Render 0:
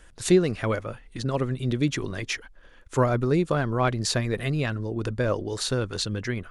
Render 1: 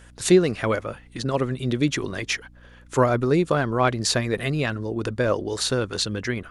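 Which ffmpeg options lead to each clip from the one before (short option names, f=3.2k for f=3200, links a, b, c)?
-af "lowshelf=f=100:g=-11,aeval=exprs='val(0)+0.00224*(sin(2*PI*60*n/s)+sin(2*PI*2*60*n/s)/2+sin(2*PI*3*60*n/s)/3+sin(2*PI*4*60*n/s)/4+sin(2*PI*5*60*n/s)/5)':c=same,volume=4dB"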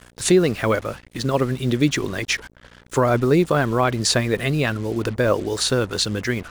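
-af "acrusher=bits=6:mix=0:aa=0.5,alimiter=level_in=9dB:limit=-1dB:release=50:level=0:latency=1,volume=-5.5dB"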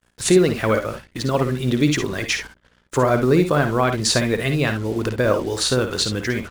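-filter_complex "[0:a]agate=range=-33dB:threshold=-36dB:ratio=3:detection=peak,asplit=2[a][b];[b]aecho=0:1:55|68:0.355|0.251[c];[a][c]amix=inputs=2:normalize=0"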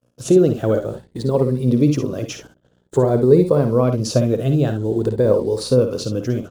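-af "afftfilt=real='re*pow(10,7/40*sin(2*PI*(0.91*log(max(b,1)*sr/1024/100)/log(2)-(0.5)*(pts-256)/sr)))':imag='im*pow(10,7/40*sin(2*PI*(0.91*log(max(b,1)*sr/1024/100)/log(2)-(0.5)*(pts-256)/sr)))':win_size=1024:overlap=0.75,equalizer=f=125:t=o:w=1:g=11,equalizer=f=250:t=o:w=1:g=6,equalizer=f=500:t=o:w=1:g=12,equalizer=f=2k:t=o:w=1:g=-10,volume=-8dB"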